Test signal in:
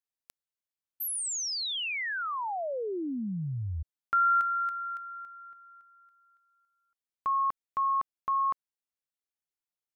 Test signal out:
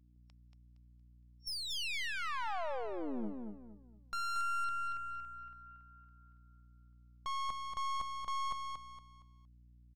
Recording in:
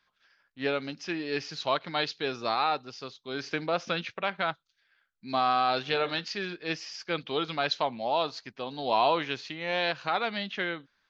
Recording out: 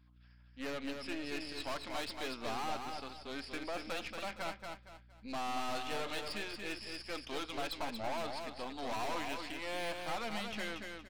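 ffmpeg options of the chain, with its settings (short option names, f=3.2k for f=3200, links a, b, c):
-af "equalizer=f=400:t=o:w=0.67:g=-8,equalizer=f=1.6k:t=o:w=0.67:g=-5,equalizer=f=4k:t=o:w=0.67:g=-5,afftfilt=real='re*between(b*sr/4096,200,5500)':imag='im*between(b*sr/4096,200,5500)':win_size=4096:overlap=0.75,aeval=exprs='val(0)+0.001*(sin(2*PI*60*n/s)+sin(2*PI*2*60*n/s)/2+sin(2*PI*3*60*n/s)/3+sin(2*PI*4*60*n/s)/4+sin(2*PI*5*60*n/s)/5)':c=same,aeval=exprs='(tanh(79.4*val(0)+0.7)-tanh(0.7))/79.4':c=same,aecho=1:1:232|464|696|928:0.562|0.18|0.0576|0.0184,volume=1dB"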